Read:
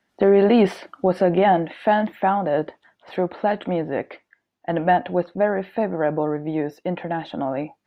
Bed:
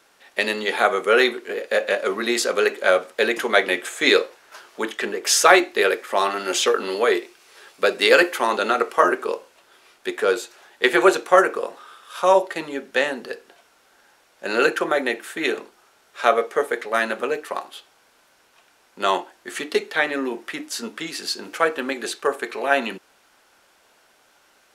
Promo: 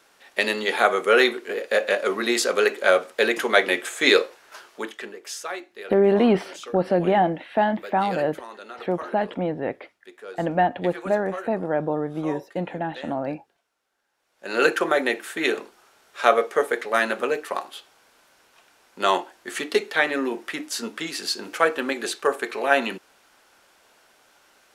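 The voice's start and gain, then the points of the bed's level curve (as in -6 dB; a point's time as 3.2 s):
5.70 s, -2.5 dB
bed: 4.6 s -0.5 dB
5.47 s -19.5 dB
14.1 s -19.5 dB
14.66 s 0 dB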